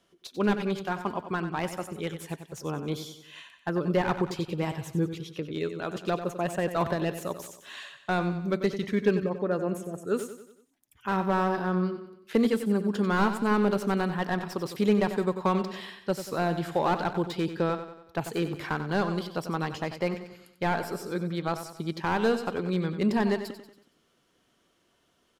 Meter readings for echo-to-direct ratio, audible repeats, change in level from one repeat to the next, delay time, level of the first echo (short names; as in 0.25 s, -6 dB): -9.5 dB, 4, -6.5 dB, 93 ms, -10.5 dB